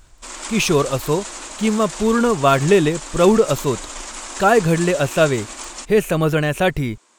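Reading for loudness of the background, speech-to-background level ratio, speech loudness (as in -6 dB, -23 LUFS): -31.0 LUFS, 13.0 dB, -18.0 LUFS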